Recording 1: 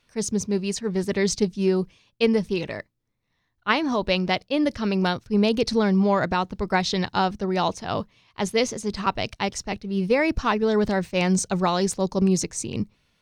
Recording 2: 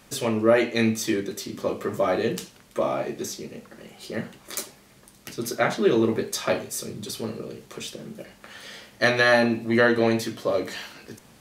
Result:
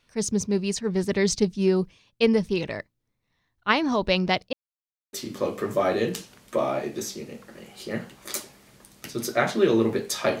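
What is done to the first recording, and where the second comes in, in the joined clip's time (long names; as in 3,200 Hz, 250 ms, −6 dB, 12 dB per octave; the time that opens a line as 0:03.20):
recording 1
0:04.53–0:05.13: silence
0:05.13: continue with recording 2 from 0:01.36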